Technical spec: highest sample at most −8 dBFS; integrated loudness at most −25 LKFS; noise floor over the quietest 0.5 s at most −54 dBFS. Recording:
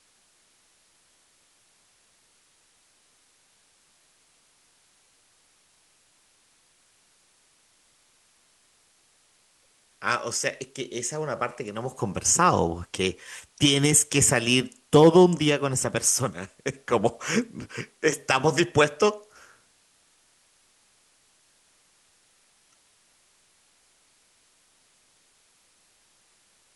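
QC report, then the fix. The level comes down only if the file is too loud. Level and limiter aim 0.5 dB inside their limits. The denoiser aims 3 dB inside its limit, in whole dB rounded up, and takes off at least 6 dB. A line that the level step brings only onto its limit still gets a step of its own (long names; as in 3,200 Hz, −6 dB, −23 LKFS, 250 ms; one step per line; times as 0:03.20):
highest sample −4.5 dBFS: out of spec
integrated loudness −23.0 LKFS: out of spec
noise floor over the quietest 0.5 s −64 dBFS: in spec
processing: level −2.5 dB
brickwall limiter −8.5 dBFS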